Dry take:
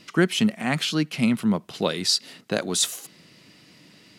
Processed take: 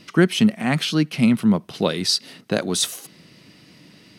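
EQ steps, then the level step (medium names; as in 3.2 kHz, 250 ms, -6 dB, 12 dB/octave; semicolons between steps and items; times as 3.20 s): bass shelf 380 Hz +4.5 dB; band-stop 7.2 kHz, Q 8.6; +1.5 dB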